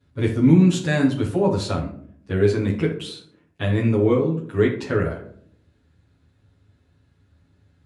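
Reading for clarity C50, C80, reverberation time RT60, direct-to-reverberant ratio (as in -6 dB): 7.5 dB, 12.0 dB, 0.60 s, -10.5 dB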